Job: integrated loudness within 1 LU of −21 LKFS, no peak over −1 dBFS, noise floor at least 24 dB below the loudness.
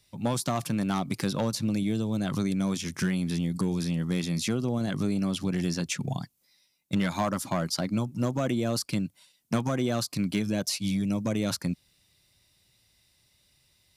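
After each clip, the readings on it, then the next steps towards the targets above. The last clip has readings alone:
share of clipped samples 0.4%; peaks flattened at −19.0 dBFS; integrated loudness −29.0 LKFS; sample peak −19.0 dBFS; target loudness −21.0 LKFS
→ clipped peaks rebuilt −19 dBFS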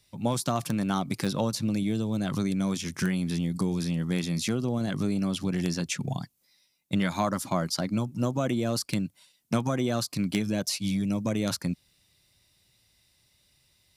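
share of clipped samples 0.0%; integrated loudness −29.0 LKFS; sample peak −10.0 dBFS; target loudness −21.0 LKFS
→ level +8 dB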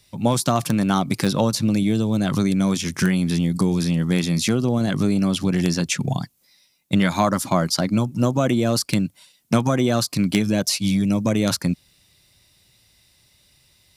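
integrated loudness −21.0 LKFS; sample peak −2.0 dBFS; background noise floor −60 dBFS

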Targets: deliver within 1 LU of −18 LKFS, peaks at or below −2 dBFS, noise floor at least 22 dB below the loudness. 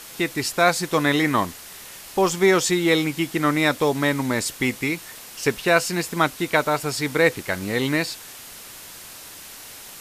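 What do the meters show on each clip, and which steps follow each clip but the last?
background noise floor −41 dBFS; target noise floor −44 dBFS; integrated loudness −21.5 LKFS; sample peak −4.5 dBFS; target loudness −18.0 LKFS
→ broadband denoise 6 dB, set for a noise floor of −41 dBFS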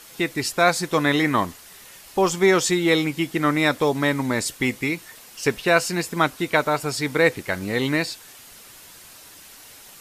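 background noise floor −46 dBFS; integrated loudness −22.0 LKFS; sample peak −4.5 dBFS; target loudness −18.0 LKFS
→ level +4 dB
brickwall limiter −2 dBFS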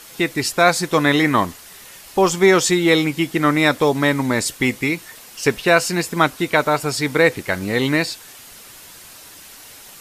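integrated loudness −18.0 LKFS; sample peak −2.0 dBFS; background noise floor −42 dBFS

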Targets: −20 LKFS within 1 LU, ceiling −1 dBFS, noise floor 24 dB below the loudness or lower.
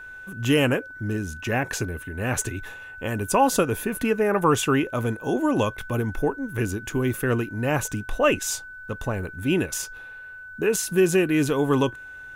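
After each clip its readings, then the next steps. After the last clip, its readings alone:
interfering tone 1,500 Hz; level of the tone −38 dBFS; integrated loudness −24.5 LKFS; sample peak −8.5 dBFS; target loudness −20.0 LKFS
→ notch filter 1,500 Hz, Q 30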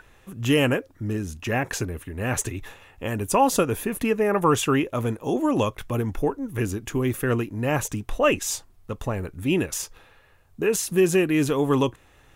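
interfering tone none found; integrated loudness −24.5 LKFS; sample peak −8.5 dBFS; target loudness −20.0 LKFS
→ level +4.5 dB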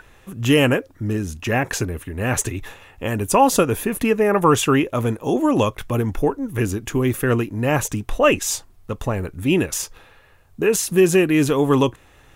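integrated loudness −20.0 LKFS; sample peak −4.0 dBFS; background noise floor −52 dBFS

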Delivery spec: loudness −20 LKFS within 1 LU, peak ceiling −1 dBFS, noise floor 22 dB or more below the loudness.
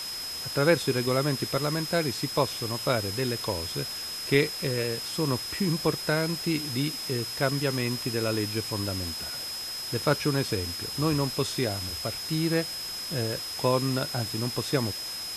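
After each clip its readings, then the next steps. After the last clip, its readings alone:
interfering tone 5,100 Hz; level of the tone −34 dBFS; background noise floor −36 dBFS; target noise floor −50 dBFS; integrated loudness −28.0 LKFS; sample peak −7.5 dBFS; target loudness −20.0 LKFS
→ notch filter 5,100 Hz, Q 30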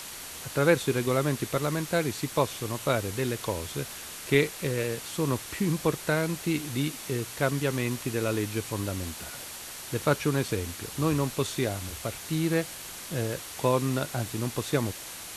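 interfering tone none found; background noise floor −41 dBFS; target noise floor −51 dBFS
→ broadband denoise 10 dB, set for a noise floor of −41 dBFS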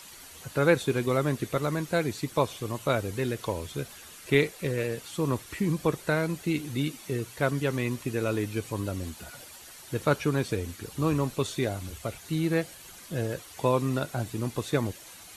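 background noise floor −48 dBFS; target noise floor −52 dBFS
→ broadband denoise 6 dB, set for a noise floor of −48 dBFS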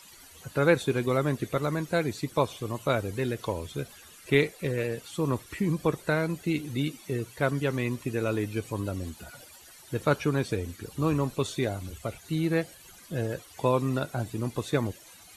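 background noise floor −52 dBFS; integrated loudness −29.5 LKFS; sample peak −8.0 dBFS; target loudness −20.0 LKFS
→ level +9.5 dB
brickwall limiter −1 dBFS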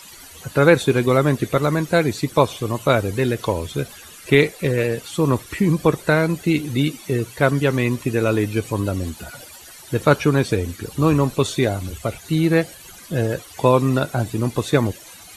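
integrated loudness −20.0 LKFS; sample peak −1.0 dBFS; background noise floor −42 dBFS

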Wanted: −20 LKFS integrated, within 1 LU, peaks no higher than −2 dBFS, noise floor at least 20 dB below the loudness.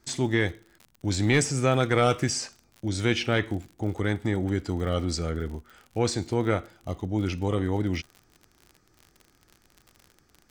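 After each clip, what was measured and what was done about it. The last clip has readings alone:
crackle rate 48 per second; integrated loudness −27.0 LKFS; sample peak −10.5 dBFS; target loudness −20.0 LKFS
→ click removal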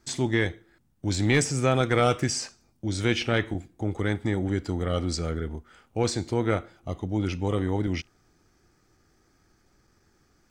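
crackle rate 0.29 per second; integrated loudness −27.0 LKFS; sample peak −9.5 dBFS; target loudness −20.0 LKFS
→ level +7 dB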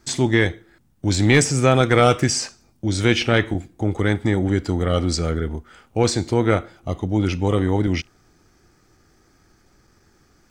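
integrated loudness −20.0 LKFS; sample peak −2.5 dBFS; background noise floor −59 dBFS

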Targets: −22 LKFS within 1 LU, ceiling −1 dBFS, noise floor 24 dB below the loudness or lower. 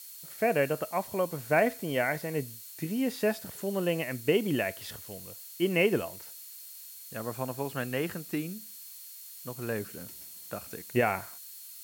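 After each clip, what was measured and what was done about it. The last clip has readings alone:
interfering tone 4,300 Hz; level of the tone −58 dBFS; background noise floor −47 dBFS; target noise floor −55 dBFS; integrated loudness −31.0 LKFS; sample peak −12.5 dBFS; target loudness −22.0 LKFS
→ notch filter 4,300 Hz, Q 30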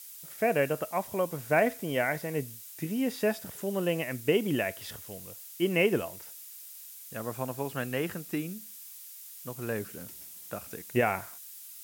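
interfering tone none found; background noise floor −47 dBFS; target noise floor −55 dBFS
→ broadband denoise 8 dB, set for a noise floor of −47 dBFS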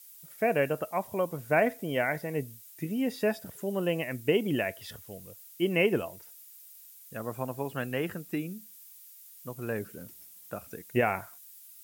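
background noise floor −52 dBFS; target noise floor −55 dBFS
→ broadband denoise 6 dB, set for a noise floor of −52 dBFS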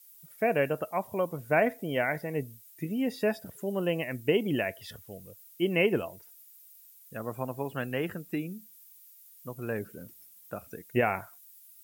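background noise floor −55 dBFS; integrated loudness −31.0 LKFS; sample peak −12.5 dBFS; target loudness −22.0 LKFS
→ level +9 dB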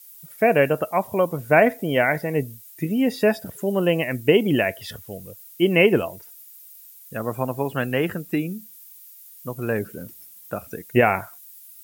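integrated loudness −22.0 LKFS; sample peak −3.5 dBFS; background noise floor −46 dBFS

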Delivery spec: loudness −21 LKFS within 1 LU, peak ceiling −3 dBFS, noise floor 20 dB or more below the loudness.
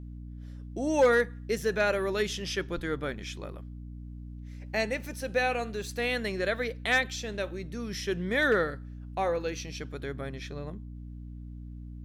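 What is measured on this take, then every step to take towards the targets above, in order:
mains hum 60 Hz; hum harmonics up to 300 Hz; level of the hum −39 dBFS; integrated loudness −30.0 LKFS; sample peak −15.5 dBFS; target loudness −21.0 LKFS
→ mains-hum notches 60/120/180/240/300 Hz
level +9 dB

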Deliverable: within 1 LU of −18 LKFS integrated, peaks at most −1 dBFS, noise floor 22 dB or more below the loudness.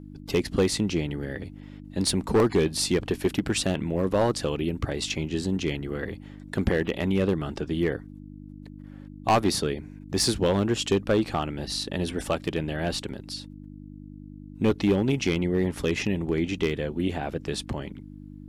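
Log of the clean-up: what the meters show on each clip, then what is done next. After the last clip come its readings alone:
share of clipped samples 0.7%; peaks flattened at −15.0 dBFS; mains hum 50 Hz; hum harmonics up to 300 Hz; level of the hum −41 dBFS; integrated loudness −27.0 LKFS; sample peak −15.0 dBFS; target loudness −18.0 LKFS
→ clipped peaks rebuilt −15 dBFS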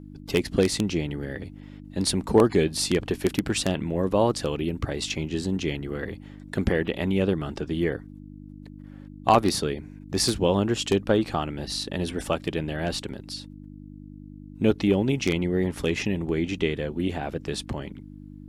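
share of clipped samples 0.0%; mains hum 50 Hz; hum harmonics up to 300 Hz; level of the hum −41 dBFS
→ hum removal 50 Hz, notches 6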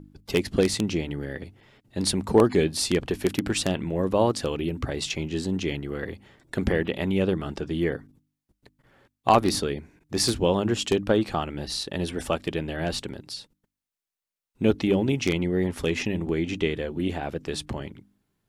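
mains hum none found; integrated loudness −26.0 LKFS; sample peak −5.5 dBFS; target loudness −18.0 LKFS
→ level +8 dB
brickwall limiter −1 dBFS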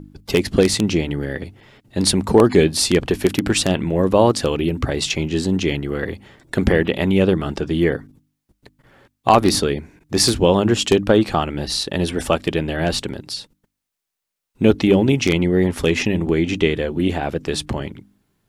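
integrated loudness −18.5 LKFS; sample peak −1.0 dBFS; background noise floor −79 dBFS

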